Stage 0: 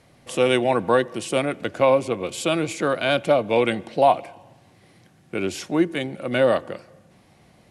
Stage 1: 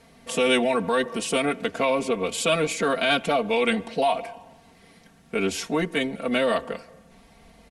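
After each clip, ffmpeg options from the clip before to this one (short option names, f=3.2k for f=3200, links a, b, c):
-filter_complex "[0:a]asubboost=boost=4:cutoff=68,aecho=1:1:4.4:0.94,acrossover=split=1900[a][b];[a]alimiter=limit=-15dB:level=0:latency=1:release=51[c];[c][b]amix=inputs=2:normalize=0"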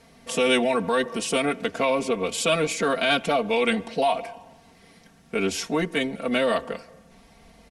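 -af "equalizer=f=5.5k:t=o:w=0.41:g=3"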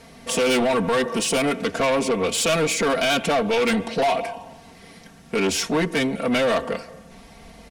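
-af "asoftclip=type=tanh:threshold=-24dB,volume=7.5dB"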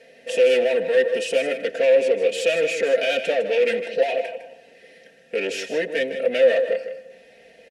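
-filter_complex "[0:a]crystalizer=i=2:c=0,asplit=3[a][b][c];[a]bandpass=f=530:t=q:w=8,volume=0dB[d];[b]bandpass=f=1.84k:t=q:w=8,volume=-6dB[e];[c]bandpass=f=2.48k:t=q:w=8,volume=-9dB[f];[d][e][f]amix=inputs=3:normalize=0,aecho=1:1:156:0.299,volume=8dB"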